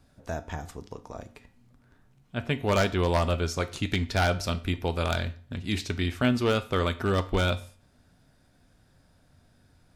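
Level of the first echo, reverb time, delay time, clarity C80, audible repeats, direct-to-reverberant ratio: no echo audible, 0.45 s, no echo audible, 21.0 dB, no echo audible, 10.0 dB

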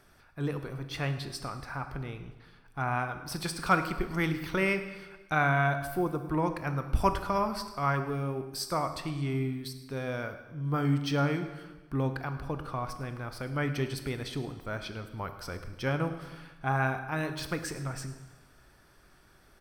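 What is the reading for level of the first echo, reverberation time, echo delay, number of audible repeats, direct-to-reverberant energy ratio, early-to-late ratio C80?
−18.5 dB, 1.2 s, 106 ms, 1, 8.5 dB, 11.0 dB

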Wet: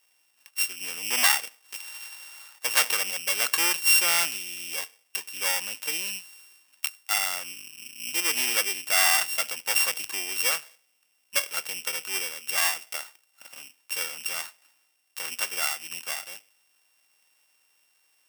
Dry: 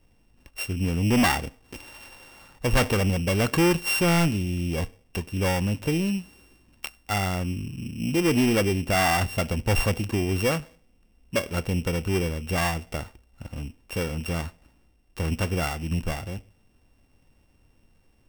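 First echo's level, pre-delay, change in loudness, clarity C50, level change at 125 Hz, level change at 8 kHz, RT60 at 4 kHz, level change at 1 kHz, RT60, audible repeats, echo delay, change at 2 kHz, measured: no echo audible, no reverb audible, +0.5 dB, no reverb audible, below −35 dB, +9.0 dB, no reverb audible, −4.5 dB, no reverb audible, no echo audible, no echo audible, +2.5 dB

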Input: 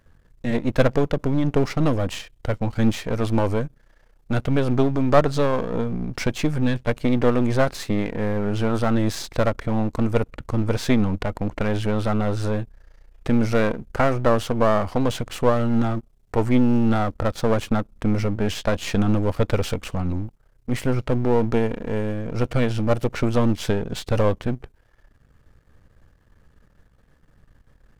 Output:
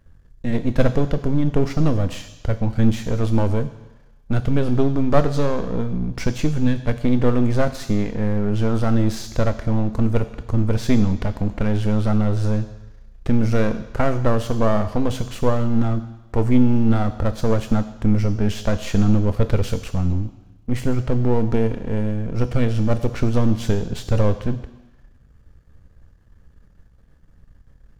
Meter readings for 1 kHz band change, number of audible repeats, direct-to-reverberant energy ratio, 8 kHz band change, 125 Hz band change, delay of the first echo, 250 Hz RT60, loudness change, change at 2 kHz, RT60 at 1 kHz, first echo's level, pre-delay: −2.5 dB, no echo audible, 10.0 dB, −1.0 dB, +4.0 dB, no echo audible, 1.0 s, +1.5 dB, −3.0 dB, 1.2 s, no echo audible, 3 ms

